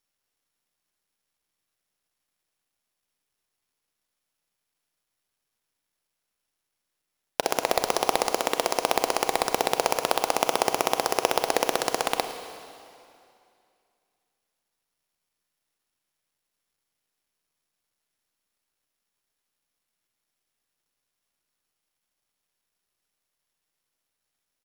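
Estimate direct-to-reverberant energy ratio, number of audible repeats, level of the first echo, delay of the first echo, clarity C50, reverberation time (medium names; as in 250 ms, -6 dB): 7.5 dB, 1, -17.5 dB, 110 ms, 8.0 dB, 2.5 s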